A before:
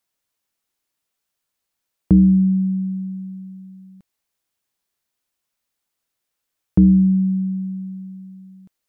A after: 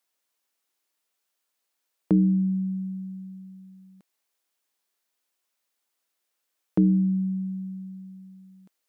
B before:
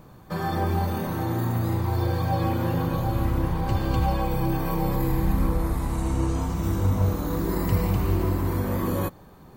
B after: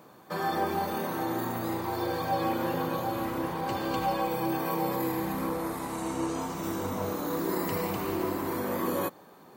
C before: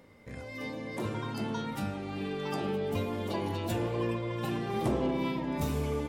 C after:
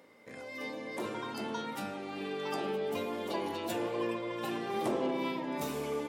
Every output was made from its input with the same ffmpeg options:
-af "highpass=290"

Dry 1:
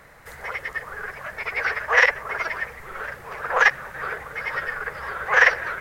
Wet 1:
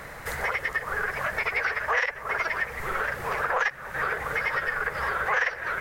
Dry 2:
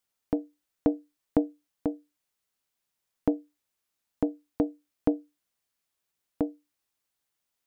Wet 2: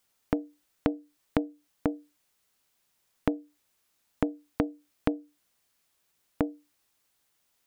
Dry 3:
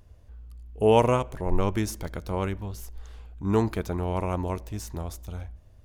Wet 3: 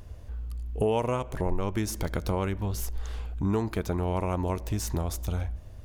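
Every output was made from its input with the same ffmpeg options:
-af "acompressor=threshold=-34dB:ratio=5,volume=9dB"

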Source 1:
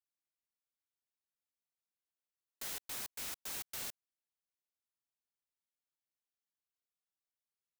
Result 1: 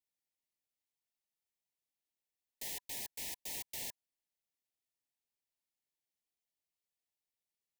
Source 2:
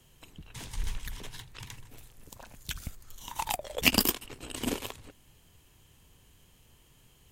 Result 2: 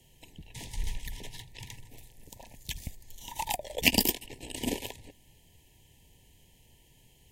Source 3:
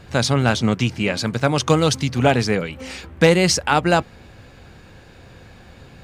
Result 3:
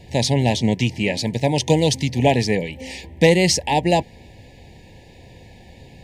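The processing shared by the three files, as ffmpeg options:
-af "asuperstop=centerf=1300:order=20:qfactor=1.8"

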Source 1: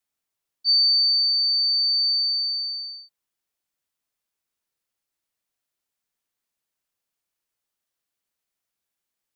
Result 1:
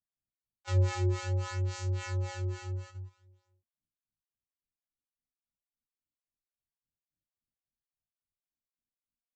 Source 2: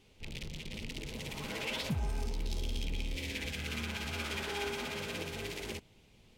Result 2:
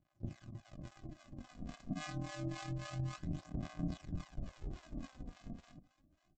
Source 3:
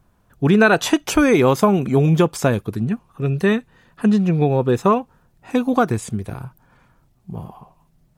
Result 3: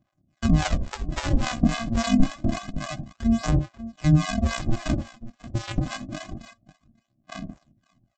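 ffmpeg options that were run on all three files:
-filter_complex "[0:a]afftfilt=real='real(if(lt(b,272),68*(eq(floor(b/68),0)*1+eq(floor(b/68),1)*0+eq(floor(b/68),2)*3+eq(floor(b/68),3)*2)+mod(b,68),b),0)':imag='imag(if(lt(b,272),68*(eq(floor(b/68),0)*1+eq(floor(b/68),1)*0+eq(floor(b/68),2)*3+eq(floor(b/68),3)*2)+mod(b,68),b),0)':win_size=2048:overlap=0.75,highshelf=f=2.2k:g=-11,aresample=16000,acrusher=samples=35:mix=1:aa=0.000001,aresample=44100,aecho=1:1:63|83|541:0.168|0.282|0.141,acrossover=split=600[a][b];[a]aeval=exprs='val(0)*(1-1/2+1/2*cos(2*PI*3.6*n/s))':c=same[c];[b]aeval=exprs='val(0)*(1-1/2-1/2*cos(2*PI*3.6*n/s))':c=same[d];[c][d]amix=inputs=2:normalize=0,adynamicequalizer=threshold=0.00282:dfrequency=430:dqfactor=3.7:tfrequency=430:tqfactor=3.7:attack=5:release=100:ratio=0.375:range=2.5:mode=cutabove:tftype=bell,agate=range=-8dB:threshold=-47dB:ratio=16:detection=peak,aphaser=in_gain=1:out_gain=1:delay=4.3:decay=0.46:speed=0.27:type=sinusoidal"

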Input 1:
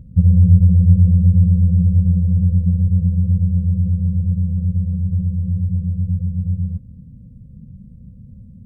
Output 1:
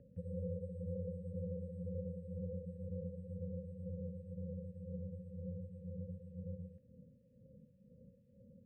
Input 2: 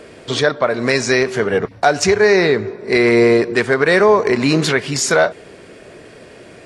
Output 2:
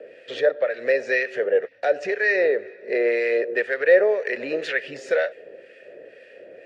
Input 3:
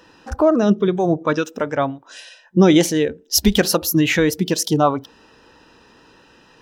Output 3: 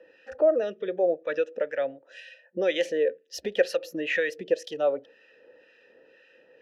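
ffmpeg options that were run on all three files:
-filter_complex "[0:a]asplit=3[a][b][c];[a]bandpass=f=530:t=q:w=8,volume=0dB[d];[b]bandpass=f=1.84k:t=q:w=8,volume=-6dB[e];[c]bandpass=f=2.48k:t=q:w=8,volume=-9dB[f];[d][e][f]amix=inputs=3:normalize=0,equalizer=f=1.2k:t=o:w=0.38:g=6,acrossover=split=1200[g][h];[g]aeval=exprs='val(0)*(1-0.7/2+0.7/2*cos(2*PI*2*n/s))':c=same[i];[h]aeval=exprs='val(0)*(1-0.7/2-0.7/2*cos(2*PI*2*n/s))':c=same[j];[i][j]amix=inputs=2:normalize=0,acrossover=split=360|4300[k][l][m];[k]acompressor=threshold=-48dB:ratio=6[n];[n][l][m]amix=inputs=3:normalize=0,volume=7dB"

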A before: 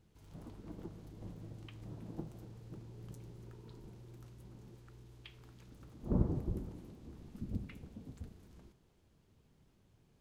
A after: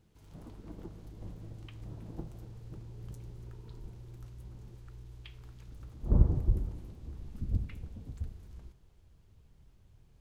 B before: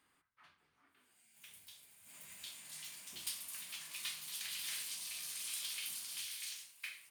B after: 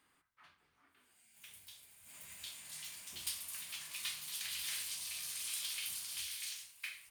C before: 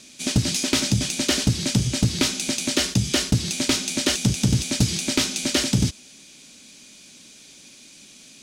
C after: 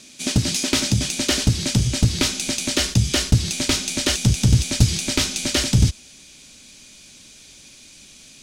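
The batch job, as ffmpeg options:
-af "asubboost=boost=4.5:cutoff=97,volume=1.5dB"

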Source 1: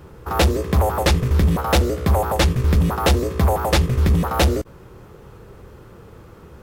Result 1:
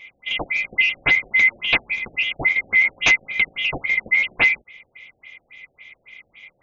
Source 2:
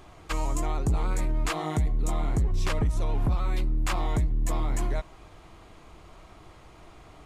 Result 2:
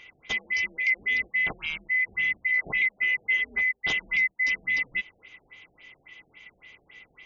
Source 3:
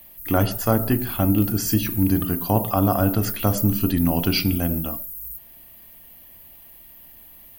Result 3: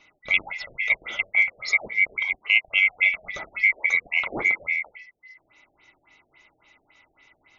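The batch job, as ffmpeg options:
-af "afftfilt=real='real(if(lt(b,920),b+92*(1-2*mod(floor(b/92),2)),b),0)':imag='imag(if(lt(b,920),b+92*(1-2*mod(floor(b/92),2)),b),0)':win_size=2048:overlap=0.75,afftfilt=real='re*lt(b*sr/1024,750*pow(7100/750,0.5+0.5*sin(2*PI*3.6*pts/sr)))':imag='im*lt(b*sr/1024,750*pow(7100/750,0.5+0.5*sin(2*PI*3.6*pts/sr)))':win_size=1024:overlap=0.75"

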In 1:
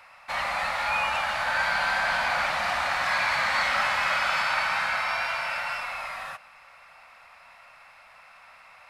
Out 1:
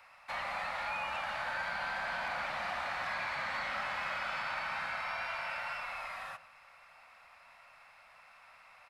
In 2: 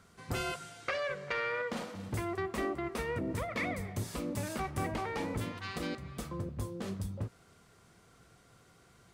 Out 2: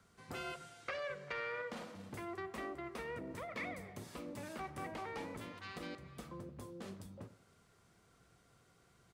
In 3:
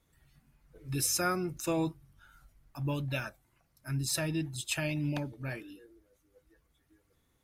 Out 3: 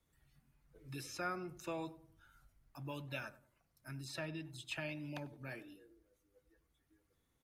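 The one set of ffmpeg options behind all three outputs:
-filter_complex "[0:a]acrossover=split=150|520|4200[a][b][c][d];[a]acompressor=threshold=-52dB:ratio=4[e];[b]acompressor=threshold=-40dB:ratio=4[f];[c]acompressor=threshold=-28dB:ratio=4[g];[d]acompressor=threshold=-53dB:ratio=4[h];[e][f][g][h]amix=inputs=4:normalize=0,asoftclip=type=hard:threshold=-20.5dB,asplit=2[i][j];[j]adelay=96,lowpass=f=990:p=1,volume=-14dB,asplit=2[k][l];[l]adelay=96,lowpass=f=990:p=1,volume=0.4,asplit=2[m][n];[n]adelay=96,lowpass=f=990:p=1,volume=0.4,asplit=2[o][p];[p]adelay=96,lowpass=f=990:p=1,volume=0.4[q];[i][k][m][o][q]amix=inputs=5:normalize=0,volume=-7dB"

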